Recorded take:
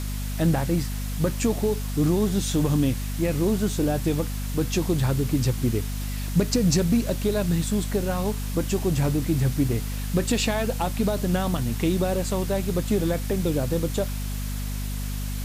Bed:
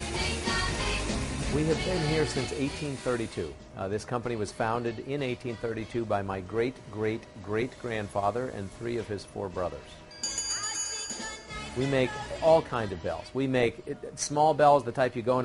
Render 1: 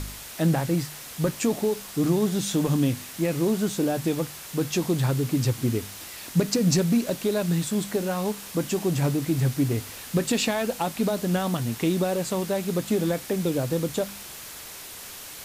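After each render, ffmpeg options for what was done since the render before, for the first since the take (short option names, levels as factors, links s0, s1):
-af "bandreject=f=50:t=h:w=4,bandreject=f=100:t=h:w=4,bandreject=f=150:t=h:w=4,bandreject=f=200:t=h:w=4,bandreject=f=250:t=h:w=4"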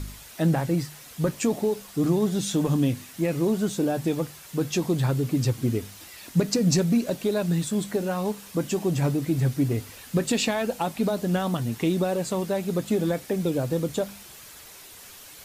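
-af "afftdn=nr=7:nf=-41"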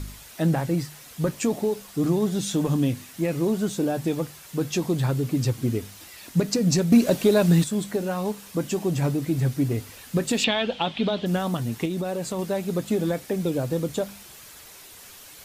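-filter_complex "[0:a]asettb=1/sr,asplit=3[s0][s1][s2];[s0]atrim=end=6.924[s3];[s1]atrim=start=6.92:end=7.64,asetpts=PTS-STARTPTS,afade=t=in:d=0.004:c=qsin,afade=t=out:st=0.716:d=0.004:c=qsin,acontrast=72[s4];[s2]atrim=start=7.636[s5];[s3][s4]acrossfade=d=0.004:c1=hsin:c2=qsin[s6];[s6][s5]acrossfade=d=0.004:c1=qsin:c2=hsin,asettb=1/sr,asplit=3[s7][s8][s9];[s7]atrim=end=10.444[s10];[s8]atrim=start=10.44:end=11.26,asetpts=PTS-STARTPTS,afade=t=in:d=0.004:c=qsin,afade=t=out:st=0.816:d=0.004:c=qsin,lowpass=f=3300:t=q:w=6.1[s11];[s9]atrim=start=11.256[s12];[s10][s11]acrossfade=d=0.004:c1=hsin:c2=qsin[s13];[s13][s12]acrossfade=d=0.004:c1=qsin:c2=hsin,asettb=1/sr,asplit=3[s14][s15][s16];[s14]atrim=end=11.854[s17];[s15]atrim=start=11.85:end=12.39,asetpts=PTS-STARTPTS,afade=t=in:d=0.004:c=qsin,afade=t=out:st=0.536:d=0.004:c=qsin,acompressor=threshold=0.0631:ratio=6:attack=3.2:release=140:knee=1:detection=peak[s18];[s16]atrim=start=12.386[s19];[s17][s18]acrossfade=d=0.004:c1=hsin:c2=qsin[s20];[s20][s19]acrossfade=d=0.004:c1=qsin:c2=hsin"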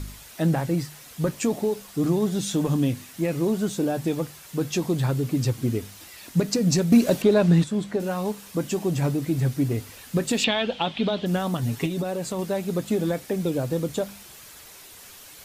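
-filter_complex "[0:a]asettb=1/sr,asplit=3[s0][s1][s2];[s0]atrim=end=7.224[s3];[s1]atrim=start=7.22:end=8,asetpts=PTS-STARTPTS,afade=t=in:d=0.004:c=qsin,afade=t=out:st=0.776:d=0.004:c=qsin,aemphasis=mode=reproduction:type=50fm[s4];[s2]atrim=start=7.996[s5];[s3][s4]acrossfade=d=0.004:c1=hsin:c2=qsin[s6];[s6][s5]acrossfade=d=0.004:c1=qsin:c2=hsin,asettb=1/sr,asplit=3[s7][s8][s9];[s7]atrim=end=11.624[s10];[s8]atrim=start=11.62:end=12.03,asetpts=PTS-STARTPTS,afade=t=in:d=0.004:c=qsin,afade=t=out:st=0.406:d=0.004:c=qsin,aecho=1:1:7.2:0.76,atrim=end_sample=18081[s11];[s9]atrim=start=12.026[s12];[s10][s11]acrossfade=d=0.004:c1=hsin:c2=qsin[s13];[s13][s12]acrossfade=d=0.004:c1=qsin:c2=hsin"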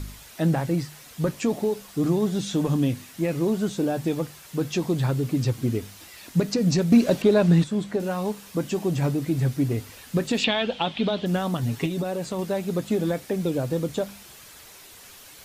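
-filter_complex "[0:a]acrossover=split=6100[s0][s1];[s1]acompressor=threshold=0.00562:ratio=4:attack=1:release=60[s2];[s0][s2]amix=inputs=2:normalize=0"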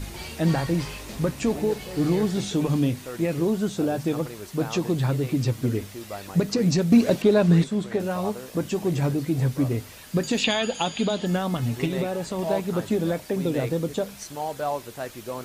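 -filter_complex "[1:a]volume=0.422[s0];[0:a][s0]amix=inputs=2:normalize=0"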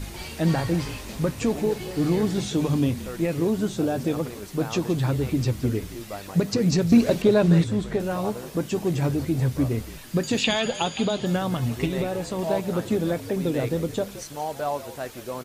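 -filter_complex "[0:a]asplit=4[s0][s1][s2][s3];[s1]adelay=171,afreqshift=-58,volume=0.188[s4];[s2]adelay=342,afreqshift=-116,volume=0.0624[s5];[s3]adelay=513,afreqshift=-174,volume=0.0204[s6];[s0][s4][s5][s6]amix=inputs=4:normalize=0"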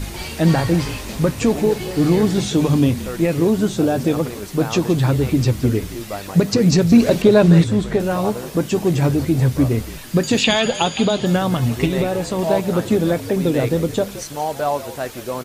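-af "volume=2.24,alimiter=limit=0.708:level=0:latency=1"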